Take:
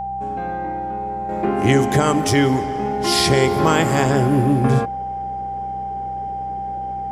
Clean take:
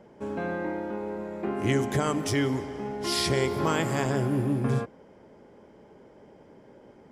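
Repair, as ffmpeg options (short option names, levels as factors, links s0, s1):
-af "bandreject=f=62.7:t=h:w=4,bandreject=f=125.4:t=h:w=4,bandreject=f=188.1:t=h:w=4,bandreject=f=790:w=30,asetnsamples=n=441:p=0,asendcmd='1.29 volume volume -9.5dB',volume=1"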